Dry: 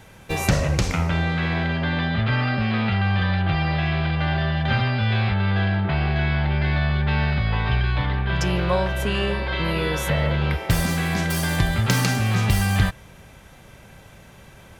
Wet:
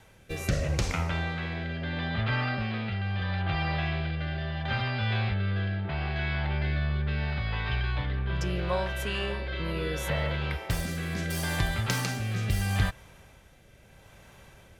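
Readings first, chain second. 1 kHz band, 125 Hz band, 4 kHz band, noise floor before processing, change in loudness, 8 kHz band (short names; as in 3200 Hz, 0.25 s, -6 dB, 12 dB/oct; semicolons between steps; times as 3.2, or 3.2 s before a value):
-8.5 dB, -8.5 dB, -7.0 dB, -47 dBFS, -8.0 dB, -8.0 dB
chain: bell 190 Hz -4.5 dB 1.6 oct; rotary speaker horn 0.75 Hz; gain -4.5 dB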